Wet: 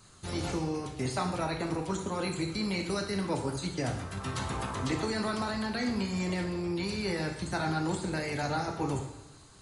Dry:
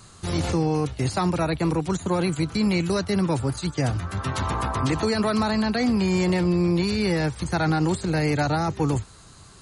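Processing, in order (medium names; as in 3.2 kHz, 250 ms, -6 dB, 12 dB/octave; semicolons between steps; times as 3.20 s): harmonic-percussive split harmonic -6 dB; two-slope reverb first 0.77 s, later 2 s, DRR 1.5 dB; trim -6.5 dB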